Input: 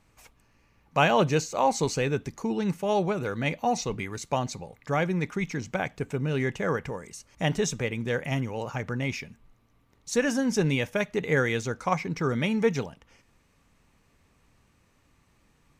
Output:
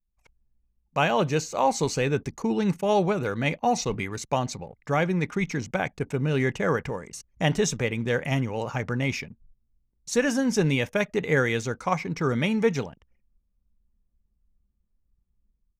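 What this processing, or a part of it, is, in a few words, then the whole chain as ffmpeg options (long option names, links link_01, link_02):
voice memo with heavy noise removal: -af "anlmdn=0.01,dynaudnorm=framelen=110:gausssize=5:maxgain=11.5dB,volume=-8dB"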